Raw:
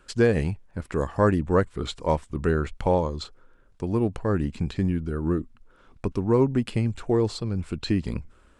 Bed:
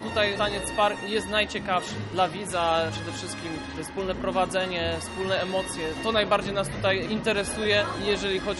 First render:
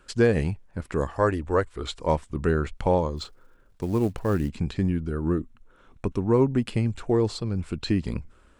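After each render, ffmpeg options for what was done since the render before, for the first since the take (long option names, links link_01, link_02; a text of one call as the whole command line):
ffmpeg -i in.wav -filter_complex "[0:a]asettb=1/sr,asplit=3[link_01][link_02][link_03];[link_01]atrim=end=1.134[link_04];[link_02]atrim=start=1.13:end=2.01,asetpts=PTS-STARTPTS,afade=type=in:duration=0.004:curve=qsin,afade=type=out:start_time=0.876:duration=0.004:curve=qsin,equalizer=frequency=170:width=1.4:gain=-12.5[link_05];[link_03]atrim=start=2.006[link_06];[link_04][link_05]acrossfade=duration=0.004:curve1=hsin:curve2=qsin[link_07];[link_07][link_06]acrossfade=duration=0.004:curve1=qsin:curve2=hsin,asplit=3[link_08][link_09][link_10];[link_08]afade=type=out:start_time=3.16:duration=0.02[link_11];[link_09]acrusher=bits=7:mode=log:mix=0:aa=0.000001,afade=type=in:start_time=3.16:duration=0.02,afade=type=out:start_time=4.48:duration=0.02[link_12];[link_10]afade=type=in:start_time=4.48:duration=0.02[link_13];[link_11][link_12][link_13]amix=inputs=3:normalize=0,asettb=1/sr,asplit=3[link_14][link_15][link_16];[link_14]atrim=end=5.314[link_17];[link_15]atrim=start=5.31:end=6.58,asetpts=PTS-STARTPTS,afade=type=in:duration=0.004:curve=qsin,afade=type=out:start_time=1.266:duration=0.004:curve=qsin,bandreject=frequency=4800:width=5.8[link_18];[link_16]atrim=start=6.576[link_19];[link_17][link_18]acrossfade=duration=0.004:curve1=hsin:curve2=qsin[link_20];[link_20][link_19]acrossfade=duration=0.004:curve1=qsin:curve2=hsin" out.wav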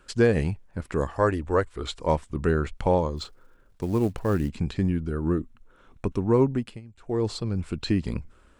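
ffmpeg -i in.wav -filter_complex "[0:a]asplit=3[link_01][link_02][link_03];[link_01]atrim=end=6.81,asetpts=PTS-STARTPTS,afade=type=out:start_time=6.45:duration=0.36:silence=0.0891251[link_04];[link_02]atrim=start=6.81:end=6.96,asetpts=PTS-STARTPTS,volume=-21dB[link_05];[link_03]atrim=start=6.96,asetpts=PTS-STARTPTS,afade=type=in:duration=0.36:silence=0.0891251[link_06];[link_04][link_05][link_06]concat=n=3:v=0:a=1" out.wav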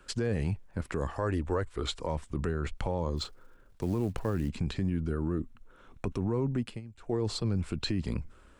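ffmpeg -i in.wav -filter_complex "[0:a]acrossover=split=180[link_01][link_02];[link_02]acompressor=threshold=-25dB:ratio=2[link_03];[link_01][link_03]amix=inputs=2:normalize=0,alimiter=limit=-21dB:level=0:latency=1:release=29" out.wav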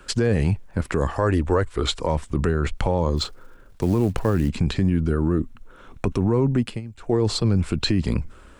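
ffmpeg -i in.wav -af "volume=10dB" out.wav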